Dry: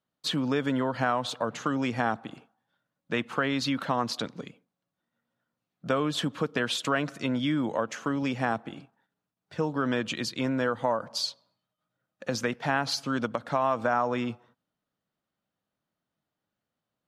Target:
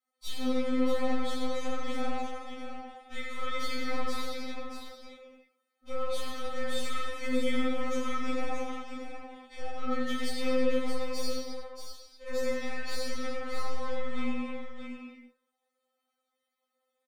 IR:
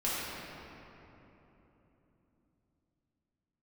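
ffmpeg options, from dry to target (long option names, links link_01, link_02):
-filter_complex "[0:a]highpass=frequency=430:poles=1,equalizer=frequency=9300:width_type=o:width=0.21:gain=6,aecho=1:1:1.6:0.76,acompressor=threshold=-33dB:ratio=4,aeval=exprs='(tanh(44.7*val(0)+0.35)-tanh(0.35))/44.7':channel_layout=same,aecho=1:1:89|630:0.398|0.447[link_01];[1:a]atrim=start_sample=2205,afade=type=out:start_time=0.42:duration=0.01,atrim=end_sample=18963[link_02];[link_01][link_02]afir=irnorm=-1:irlink=0,afftfilt=real='re*3.46*eq(mod(b,12),0)':imag='im*3.46*eq(mod(b,12),0)':win_size=2048:overlap=0.75,volume=-2dB"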